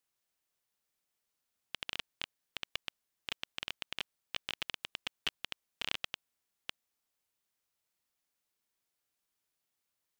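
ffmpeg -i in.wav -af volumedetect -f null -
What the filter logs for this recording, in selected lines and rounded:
mean_volume: -47.5 dB
max_volume: -11.5 dB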